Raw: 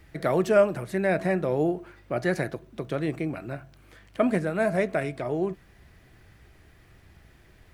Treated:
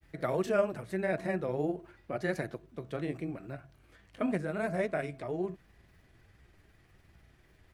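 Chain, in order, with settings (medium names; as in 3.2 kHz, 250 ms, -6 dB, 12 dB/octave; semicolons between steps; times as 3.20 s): granulator 100 ms, spray 20 ms, pitch spread up and down by 0 st; trim -6 dB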